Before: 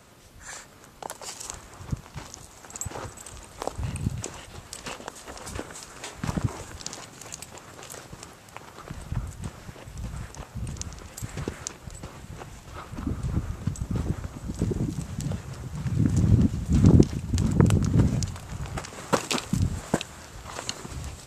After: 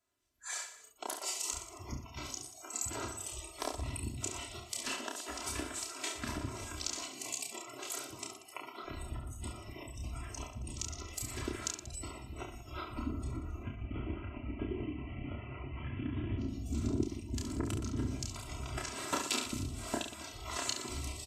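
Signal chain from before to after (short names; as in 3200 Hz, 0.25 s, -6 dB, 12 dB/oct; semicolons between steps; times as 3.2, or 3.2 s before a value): 13.63–16.38 CVSD 16 kbps; bell 680 Hz -5.5 dB 2.7 oct; notches 50/100/150/200 Hz; spectral noise reduction 27 dB; compressor 2.5:1, threshold -35 dBFS, peak gain reduction 15.5 dB; low shelf 95 Hz -8.5 dB; comb 3 ms, depth 88%; reverse bouncing-ball echo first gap 30 ms, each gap 1.3×, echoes 5; AGC gain up to 3 dB; gain -4.5 dB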